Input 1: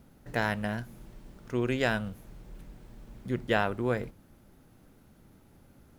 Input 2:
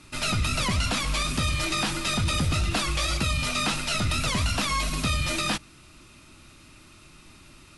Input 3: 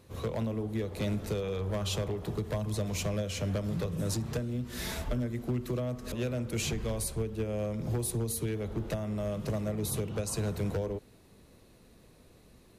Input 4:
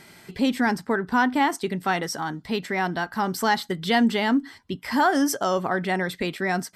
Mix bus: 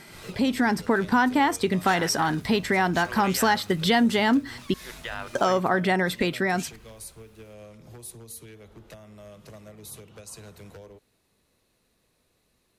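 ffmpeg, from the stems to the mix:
ffmpeg -i stem1.wav -i stem2.wav -i stem3.wav -i stem4.wav -filter_complex "[0:a]highpass=950,alimiter=level_in=0.5dB:limit=-24dB:level=0:latency=1:release=35,volume=-0.5dB,adelay=1550,volume=2.5dB[link_01];[1:a]asoftclip=type=tanh:threshold=-30dB,volume=-14.5dB[link_02];[2:a]tiltshelf=frequency=690:gain=-5,volume=-10.5dB[link_03];[3:a]dynaudnorm=framelen=120:gausssize=11:maxgain=8.5dB,volume=1.5dB,asplit=3[link_04][link_05][link_06];[link_04]atrim=end=4.74,asetpts=PTS-STARTPTS,afade=type=out:start_time=4.736:duration=0.004:curve=hsin[link_07];[link_05]atrim=start=4.74:end=5.35,asetpts=PTS-STARTPTS,volume=0[link_08];[link_06]atrim=start=5.35,asetpts=PTS-STARTPTS,afade=type=in:duration=0.004:curve=hsin[link_09];[link_07][link_08][link_09]concat=n=3:v=0:a=1[link_10];[link_02][link_10]amix=inputs=2:normalize=0,acompressor=threshold=-22dB:ratio=2.5,volume=0dB[link_11];[link_01][link_03][link_11]amix=inputs=3:normalize=0" out.wav

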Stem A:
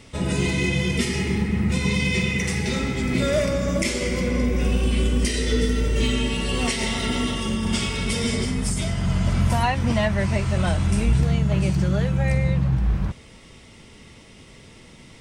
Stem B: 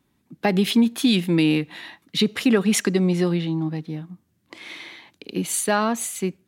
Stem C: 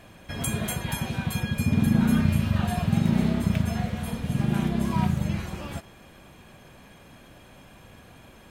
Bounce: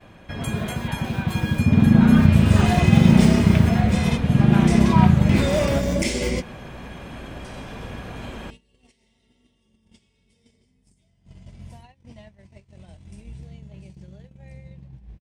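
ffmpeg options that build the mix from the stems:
ffmpeg -i stem1.wav -i stem2.wav -i stem3.wav -filter_complex "[0:a]equalizer=frequency=1300:width_type=o:width=0.68:gain=-12,adelay=2200,volume=-7.5dB[link_01];[1:a]acrusher=samples=35:mix=1:aa=0.000001,highshelf=frequency=9200:gain=7.5,alimiter=limit=-14dB:level=0:latency=1,volume=-16dB,asplit=2[link_02][link_03];[2:a]highshelf=frequency=5300:gain=-11.5,volume=2.5dB[link_04];[link_03]apad=whole_len=767417[link_05];[link_01][link_05]sidechaingate=range=-25dB:threshold=-54dB:ratio=16:detection=peak[link_06];[link_06][link_02][link_04]amix=inputs=3:normalize=0,agate=range=-20dB:threshold=-52dB:ratio=16:detection=peak,highshelf=frequency=11000:gain=-5.5,dynaudnorm=framelen=460:gausssize=7:maxgain=12dB" out.wav

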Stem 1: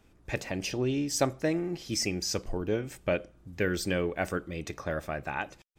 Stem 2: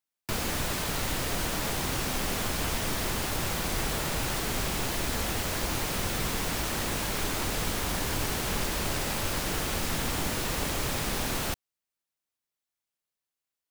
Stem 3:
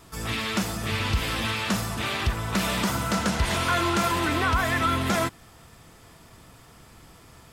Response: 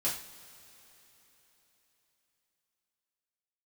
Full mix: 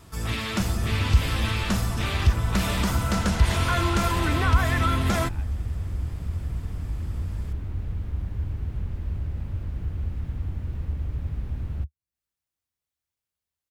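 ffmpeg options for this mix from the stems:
-filter_complex "[0:a]acompressor=threshold=-36dB:ratio=6,volume=-9dB[link_01];[1:a]acrossover=split=3000[link_02][link_03];[link_03]acompressor=threshold=-50dB:ratio=4:attack=1:release=60[link_04];[link_02][link_04]amix=inputs=2:normalize=0,equalizer=frequency=75:width=1.5:gain=8,acrossover=split=150|360[link_05][link_06][link_07];[link_05]acompressor=threshold=-32dB:ratio=4[link_08];[link_06]acompressor=threshold=-49dB:ratio=4[link_09];[link_07]acompressor=threshold=-57dB:ratio=4[link_10];[link_08][link_09][link_10]amix=inputs=3:normalize=0,adelay=300,volume=-1dB[link_11];[2:a]volume=-2dB[link_12];[link_01][link_11][link_12]amix=inputs=3:normalize=0,equalizer=frequency=65:width_type=o:width=2:gain=9.5"

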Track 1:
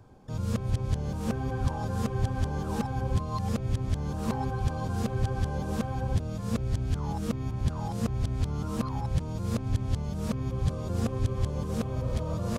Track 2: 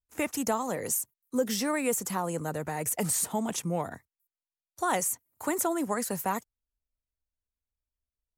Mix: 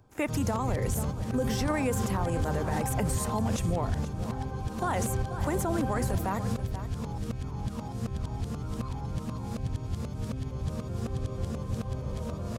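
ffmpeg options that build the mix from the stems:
ffmpeg -i stem1.wav -i stem2.wav -filter_complex "[0:a]volume=1dB,asplit=2[link_01][link_02];[link_02]volume=-9dB[link_03];[1:a]highshelf=frequency=5100:gain=-11,volume=2.5dB,asplit=3[link_04][link_05][link_06];[link_05]volume=-16dB[link_07];[link_06]apad=whole_len=555023[link_08];[link_01][link_08]sidechaingate=range=-7dB:threshold=-48dB:ratio=16:detection=peak[link_09];[link_03][link_07]amix=inputs=2:normalize=0,aecho=0:1:484:1[link_10];[link_09][link_04][link_10]amix=inputs=3:normalize=0,alimiter=limit=-20dB:level=0:latency=1:release=36" out.wav

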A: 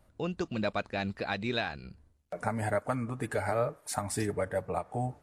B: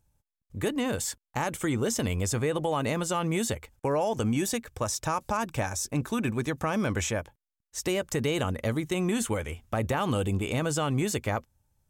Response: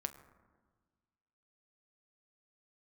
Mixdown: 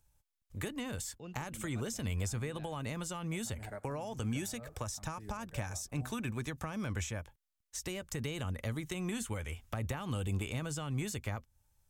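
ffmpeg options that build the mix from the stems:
-filter_complex "[0:a]adelay=1000,volume=-13.5dB,asplit=2[link_01][link_02];[link_02]volume=-11.5dB[link_03];[1:a]equalizer=frequency=220:width=0.34:gain=-9.5,volume=2dB,asplit=2[link_04][link_05];[link_05]apad=whole_len=274511[link_06];[link_01][link_06]sidechaincompress=threshold=-36dB:ratio=8:attack=5.9:release=108[link_07];[2:a]atrim=start_sample=2205[link_08];[link_03][link_08]afir=irnorm=-1:irlink=0[link_09];[link_07][link_04][link_09]amix=inputs=3:normalize=0,acrossover=split=250[link_10][link_11];[link_11]acompressor=threshold=-40dB:ratio=6[link_12];[link_10][link_12]amix=inputs=2:normalize=0"

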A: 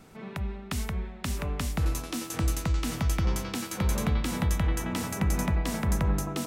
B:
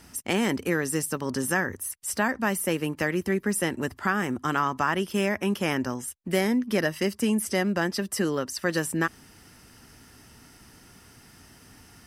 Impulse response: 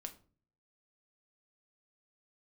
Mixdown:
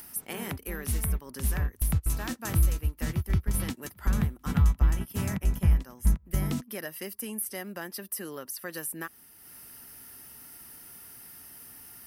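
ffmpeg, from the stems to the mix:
-filter_complex "[0:a]asubboost=boost=5.5:cutoff=200,adelay=150,volume=2.5dB[link_01];[1:a]lowshelf=frequency=310:gain=-7,acompressor=mode=upward:threshold=-39dB:ratio=2.5,aexciter=amount=4.9:drive=8.7:freq=10000,volume=-8.5dB,asplit=2[link_02][link_03];[link_03]apad=whole_len=291750[link_04];[link_01][link_04]sidechaingate=range=-41dB:threshold=-35dB:ratio=16:detection=peak[link_05];[link_05][link_02]amix=inputs=2:normalize=0,acompressor=threshold=-36dB:ratio=1.5"

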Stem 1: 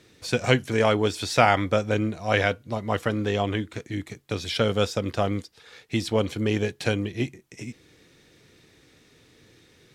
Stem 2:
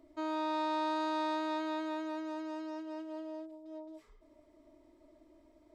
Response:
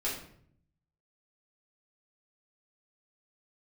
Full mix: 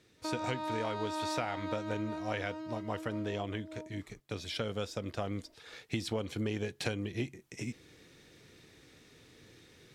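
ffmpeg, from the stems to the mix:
-filter_complex "[0:a]volume=-2dB,afade=type=in:start_time=5.14:duration=0.54:silence=0.421697,asplit=2[link_01][link_02];[1:a]volume=0dB[link_03];[link_02]apad=whole_len=253505[link_04];[link_03][link_04]sidechaingate=range=-33dB:threshold=-50dB:ratio=16:detection=peak[link_05];[link_01][link_05]amix=inputs=2:normalize=0,acompressor=threshold=-31dB:ratio=6"

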